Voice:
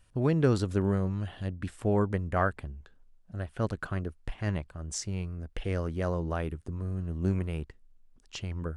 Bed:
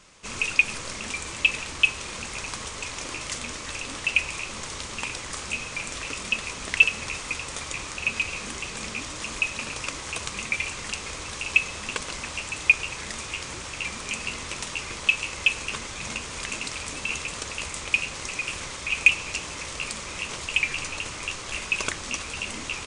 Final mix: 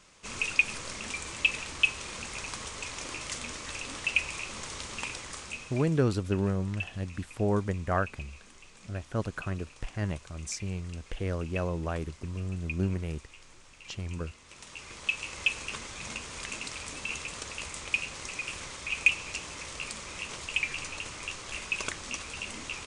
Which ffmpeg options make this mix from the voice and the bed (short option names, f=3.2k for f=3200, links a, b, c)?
-filter_complex "[0:a]adelay=5550,volume=-1dB[a];[1:a]volume=10dB,afade=t=out:st=5.04:d=0.99:silence=0.158489,afade=t=in:st=14.43:d=0.98:silence=0.188365[b];[a][b]amix=inputs=2:normalize=0"